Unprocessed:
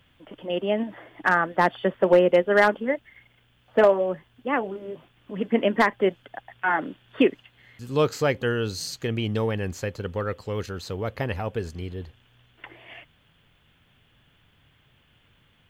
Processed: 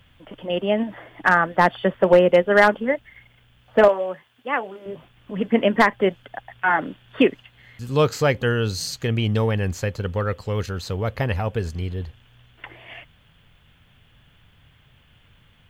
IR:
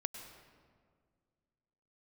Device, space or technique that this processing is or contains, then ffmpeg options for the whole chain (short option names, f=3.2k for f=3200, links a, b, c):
low shelf boost with a cut just above: -filter_complex "[0:a]lowshelf=f=110:g=6.5,equalizer=f=330:t=o:w=0.8:g=-4,asettb=1/sr,asplit=3[a][b][c];[a]atrim=end=3.884[d];[b]atrim=start=3.88:end=4.86,asetpts=PTS-STARTPTS,afade=t=in:d=0.004:c=qsin,afade=t=out:st=0.976:d=0.004:c=qsin,highpass=f=700:p=1[e];[c]atrim=start=4.856[f];[d][e]acrossfade=d=0.004:c1=hsin:c2=qsin[g];[g][f]acrossfade=d=0.004:c1=qsin:c2=hsin,volume=4dB"